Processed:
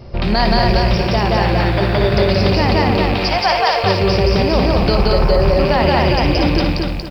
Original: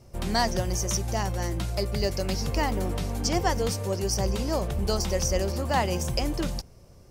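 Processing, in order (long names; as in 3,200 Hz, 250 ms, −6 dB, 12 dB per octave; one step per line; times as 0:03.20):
loose part that buzzes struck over −28 dBFS, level −29 dBFS
0:02.96–0:03.84: inverse Chebyshev high-pass filter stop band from 170 Hz, stop band 60 dB
0:04.95–0:05.42: high shelf with overshoot 2,000 Hz −13.5 dB, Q 1.5
in parallel at +1 dB: downward compressor, threshold −37 dBFS, peak gain reduction 16.5 dB
0:01.45–0:02.12: on the sum: sample-rate reduction 4,100 Hz, jitter 0%
on a send: loudspeakers that aren't time-aligned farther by 20 metres −11 dB, 60 metres −1 dB
on the sum: downsampling to 11,025 Hz
boost into a limiter +14.5 dB
feedback echo at a low word length 233 ms, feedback 35%, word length 7 bits, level −3 dB
level −5 dB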